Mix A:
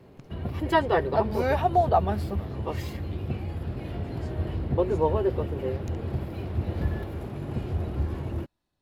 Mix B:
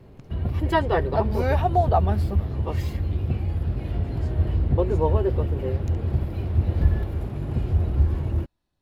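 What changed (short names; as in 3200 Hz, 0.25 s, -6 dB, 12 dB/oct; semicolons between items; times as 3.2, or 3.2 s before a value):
background: add low shelf 66 Hz +11 dB; master: add low shelf 95 Hz +6.5 dB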